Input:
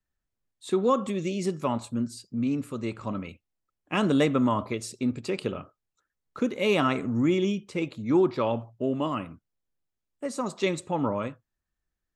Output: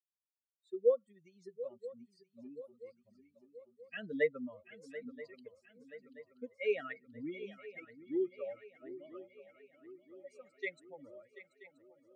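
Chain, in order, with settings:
spectral dynamics exaggerated over time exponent 3
pair of resonant band-passes 960 Hz, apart 2 octaves
feedback echo with a long and a short gap by turns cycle 979 ms, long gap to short 3 to 1, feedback 52%, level −15 dB
level +3.5 dB

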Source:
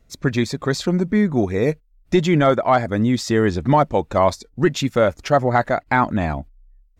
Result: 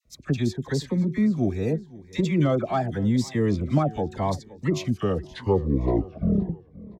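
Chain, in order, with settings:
turntable brake at the end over 2.29 s
low-shelf EQ 250 Hz +7.5 dB
notch filter 1,400 Hz, Q 9.7
on a send: repeating echo 520 ms, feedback 32%, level −20 dB
on the sum: tape wow and flutter 62 cents
high-pass filter 57 Hz
hum removal 369.5 Hz, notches 2
all-pass dispersion lows, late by 54 ms, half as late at 1,100 Hz
phaser whose notches keep moving one way rising 0.85 Hz
level −8 dB

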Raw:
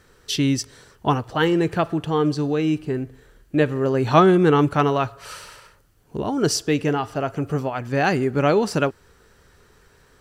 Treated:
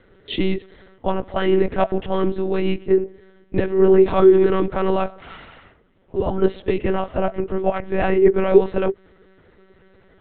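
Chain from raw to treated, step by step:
brickwall limiter −12.5 dBFS, peak gain reduction 10.5 dB
hollow resonant body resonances 390/650/2,000 Hz, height 14 dB, ringing for 80 ms
one-pitch LPC vocoder at 8 kHz 190 Hz
level −1 dB

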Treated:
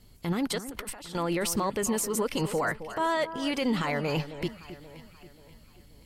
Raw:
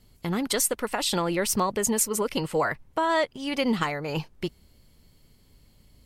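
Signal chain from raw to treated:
brickwall limiter −22 dBFS, peak gain reduction 11 dB
0:00.58–0:01.15: compressor whose output falls as the input rises −45 dBFS, ratio −1
delay that swaps between a low-pass and a high-pass 266 ms, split 1,900 Hz, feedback 64%, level −12 dB
level +2 dB

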